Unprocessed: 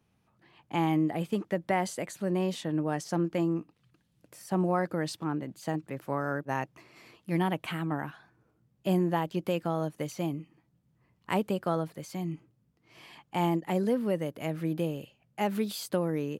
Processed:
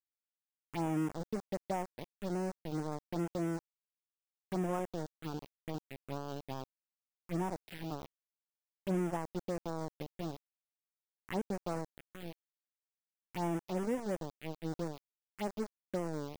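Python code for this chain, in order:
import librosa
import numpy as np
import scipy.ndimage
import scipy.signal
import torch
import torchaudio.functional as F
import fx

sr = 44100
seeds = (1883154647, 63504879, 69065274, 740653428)

y = fx.env_lowpass_down(x, sr, base_hz=1100.0, full_db=-27.0)
y = np.where(np.abs(y) >= 10.0 ** (-29.5 / 20.0), y, 0.0)
y = fx.env_phaser(y, sr, low_hz=580.0, high_hz=4200.0, full_db=-24.0)
y = y * librosa.db_to_amplitude(-6.5)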